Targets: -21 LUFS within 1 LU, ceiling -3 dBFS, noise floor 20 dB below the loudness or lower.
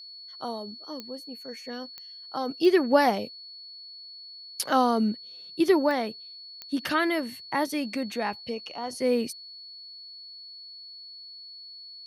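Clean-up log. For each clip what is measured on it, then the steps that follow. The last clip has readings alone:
clicks 5; steady tone 4400 Hz; tone level -42 dBFS; loudness -27.5 LUFS; peak -7.5 dBFS; loudness target -21.0 LUFS
-> de-click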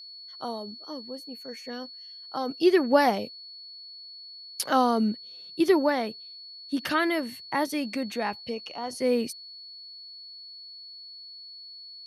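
clicks 0; steady tone 4400 Hz; tone level -42 dBFS
-> notch 4400 Hz, Q 30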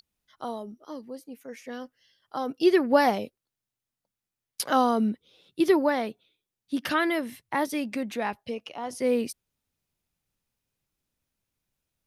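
steady tone none; loudness -26.5 LUFS; peak -7.5 dBFS; loudness target -21.0 LUFS
-> gain +5.5 dB; limiter -3 dBFS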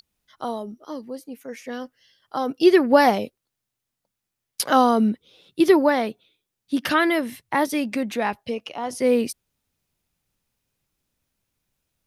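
loudness -21.0 LUFS; peak -3.0 dBFS; noise floor -83 dBFS

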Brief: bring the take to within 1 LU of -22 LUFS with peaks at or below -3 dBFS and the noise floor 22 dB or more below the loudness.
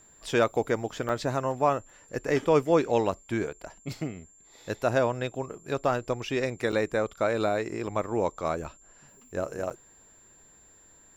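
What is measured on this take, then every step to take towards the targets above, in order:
dropouts 5; longest dropout 5.5 ms; steady tone 7300 Hz; tone level -55 dBFS; loudness -28.5 LUFS; peak -10.5 dBFS; loudness target -22.0 LUFS
-> interpolate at 1.09/3.12/6.72/7.87/9.7, 5.5 ms; notch 7300 Hz, Q 30; gain +6.5 dB

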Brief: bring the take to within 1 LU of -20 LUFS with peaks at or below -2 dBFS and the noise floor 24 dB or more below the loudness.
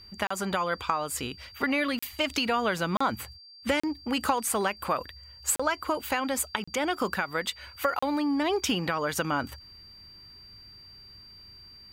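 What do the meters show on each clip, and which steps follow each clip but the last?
dropouts 7; longest dropout 35 ms; steady tone 4700 Hz; tone level -48 dBFS; loudness -29.0 LUFS; peak -9.0 dBFS; loudness target -20.0 LUFS
-> interpolate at 0.27/1.99/2.97/3.8/5.56/6.64/7.99, 35 ms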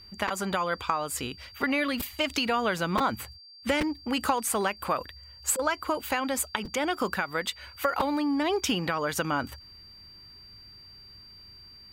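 dropouts 0; steady tone 4700 Hz; tone level -48 dBFS
-> notch 4700 Hz, Q 30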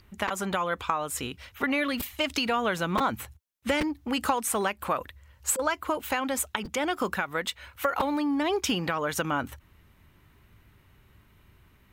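steady tone none; loudness -29.0 LUFS; peak -9.0 dBFS; loudness target -20.0 LUFS
-> gain +9 dB; limiter -2 dBFS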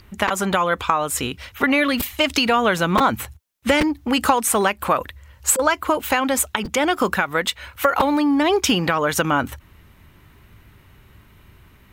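loudness -20.0 LUFS; peak -2.0 dBFS; noise floor -52 dBFS

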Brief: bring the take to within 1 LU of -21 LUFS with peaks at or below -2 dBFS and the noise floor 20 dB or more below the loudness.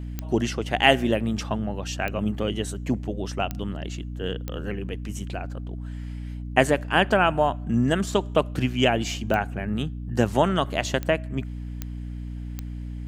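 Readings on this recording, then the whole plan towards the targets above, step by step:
clicks 8; hum 60 Hz; harmonics up to 300 Hz; hum level -31 dBFS; loudness -25.5 LUFS; peak -1.5 dBFS; loudness target -21.0 LUFS
-> de-click; notches 60/120/180/240/300 Hz; gain +4.5 dB; limiter -2 dBFS

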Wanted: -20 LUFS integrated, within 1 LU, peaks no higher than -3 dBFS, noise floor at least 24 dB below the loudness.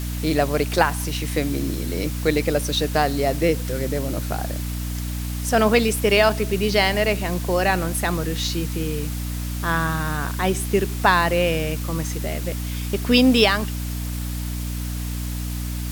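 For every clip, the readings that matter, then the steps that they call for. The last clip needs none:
hum 60 Hz; harmonics up to 300 Hz; hum level -25 dBFS; noise floor -28 dBFS; noise floor target -46 dBFS; loudness -22.0 LUFS; peak -2.5 dBFS; loudness target -20.0 LUFS
-> de-hum 60 Hz, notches 5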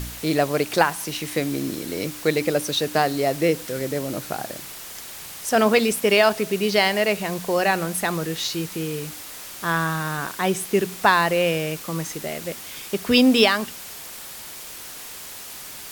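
hum none; noise floor -38 dBFS; noise floor target -46 dBFS
-> denoiser 8 dB, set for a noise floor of -38 dBFS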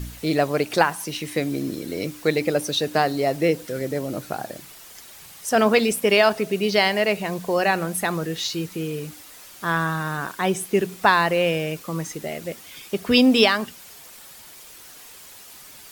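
noise floor -44 dBFS; noise floor target -46 dBFS
-> denoiser 6 dB, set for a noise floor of -44 dBFS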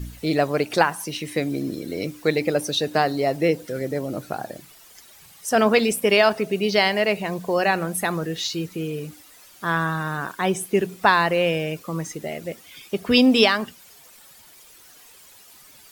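noise floor -49 dBFS; loudness -22.0 LUFS; peak -3.5 dBFS; loudness target -20.0 LUFS
-> gain +2 dB; limiter -3 dBFS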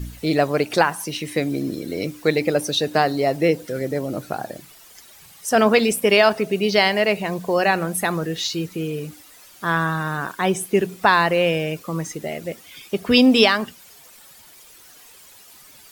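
loudness -20.5 LUFS; peak -3.0 dBFS; noise floor -47 dBFS

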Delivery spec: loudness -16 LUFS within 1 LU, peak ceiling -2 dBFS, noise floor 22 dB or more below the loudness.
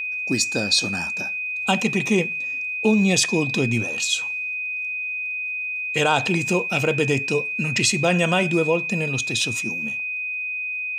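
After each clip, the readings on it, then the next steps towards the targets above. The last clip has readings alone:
ticks 31/s; steady tone 2500 Hz; tone level -25 dBFS; loudness -21.5 LUFS; peak -6.0 dBFS; loudness target -16.0 LUFS
-> de-click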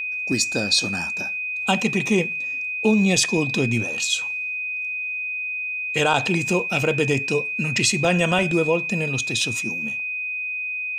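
ticks 0.091/s; steady tone 2500 Hz; tone level -25 dBFS
-> notch 2500 Hz, Q 30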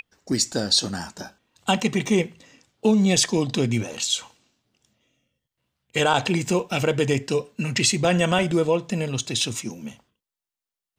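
steady tone none; loudness -22.5 LUFS; peak -7.0 dBFS; loudness target -16.0 LUFS
-> gain +6.5 dB; limiter -2 dBFS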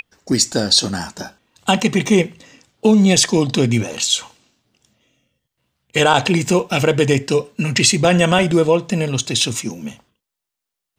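loudness -16.5 LUFS; peak -2.0 dBFS; noise floor -83 dBFS

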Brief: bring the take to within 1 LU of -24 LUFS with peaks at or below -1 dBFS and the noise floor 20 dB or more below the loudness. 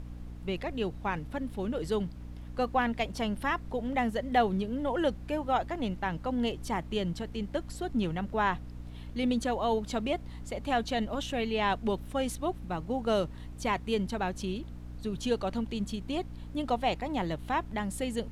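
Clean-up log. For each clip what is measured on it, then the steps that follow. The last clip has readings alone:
hum 60 Hz; harmonics up to 300 Hz; hum level -41 dBFS; noise floor -43 dBFS; noise floor target -52 dBFS; loudness -32.0 LUFS; peak -13.0 dBFS; loudness target -24.0 LUFS
-> notches 60/120/180/240/300 Hz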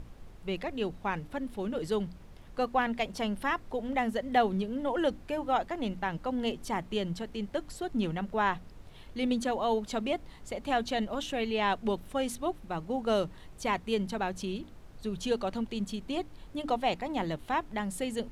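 hum none; noise floor -51 dBFS; noise floor target -53 dBFS
-> noise print and reduce 6 dB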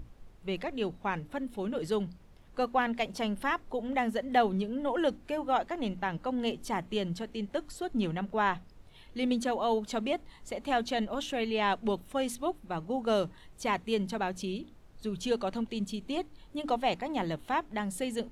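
noise floor -55 dBFS; loudness -32.5 LUFS; peak -13.0 dBFS; loudness target -24.0 LUFS
-> gain +8.5 dB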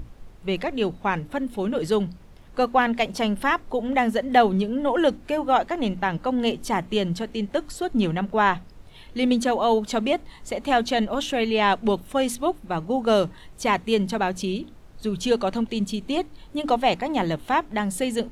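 loudness -24.0 LUFS; peak -4.5 dBFS; noise floor -47 dBFS

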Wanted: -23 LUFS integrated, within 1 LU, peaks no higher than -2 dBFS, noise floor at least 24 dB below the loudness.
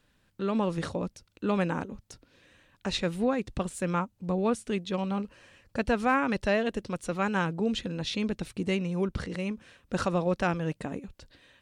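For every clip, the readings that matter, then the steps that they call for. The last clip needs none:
loudness -30.5 LUFS; peak -13.5 dBFS; loudness target -23.0 LUFS
-> gain +7.5 dB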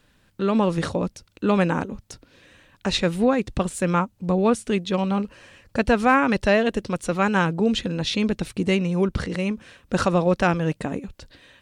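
loudness -23.0 LUFS; peak -6.0 dBFS; noise floor -63 dBFS

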